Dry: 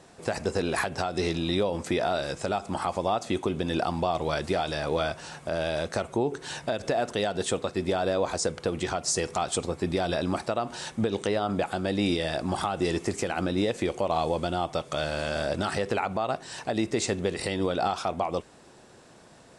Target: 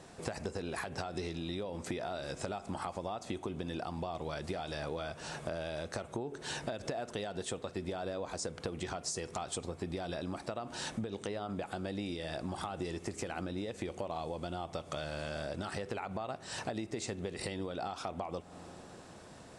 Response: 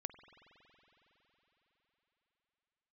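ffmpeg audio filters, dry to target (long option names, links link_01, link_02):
-filter_complex "[0:a]asplit=2[link_01][link_02];[1:a]atrim=start_sample=2205,lowshelf=frequency=260:gain=11[link_03];[link_02][link_03]afir=irnorm=-1:irlink=0,volume=-9.5dB[link_04];[link_01][link_04]amix=inputs=2:normalize=0,acompressor=threshold=-32dB:ratio=12,volume=-2.5dB"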